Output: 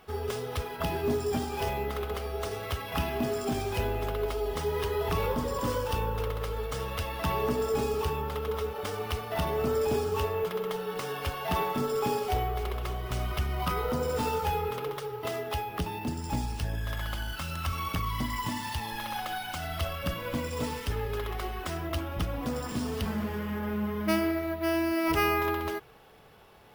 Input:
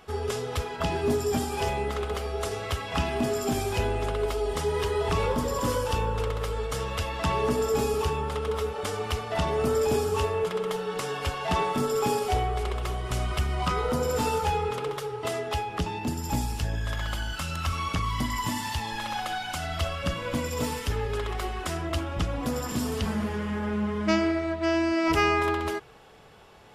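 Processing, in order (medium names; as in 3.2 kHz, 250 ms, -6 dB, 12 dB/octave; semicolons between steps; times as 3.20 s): careless resampling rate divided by 3×, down filtered, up hold; trim -3 dB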